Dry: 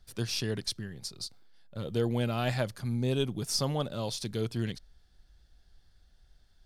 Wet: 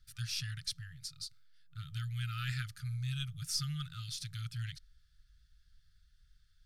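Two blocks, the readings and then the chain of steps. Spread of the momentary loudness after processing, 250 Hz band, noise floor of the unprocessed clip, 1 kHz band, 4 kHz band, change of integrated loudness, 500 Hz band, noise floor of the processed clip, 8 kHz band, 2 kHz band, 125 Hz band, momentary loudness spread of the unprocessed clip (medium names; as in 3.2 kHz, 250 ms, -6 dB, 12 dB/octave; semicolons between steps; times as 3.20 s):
10 LU, under -15 dB, -63 dBFS, -12.5 dB, -4.5 dB, -7.0 dB, under -40 dB, -68 dBFS, -4.5 dB, -4.5 dB, -4.5 dB, 11 LU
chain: FFT band-reject 170–1200 Hz; trim -4.5 dB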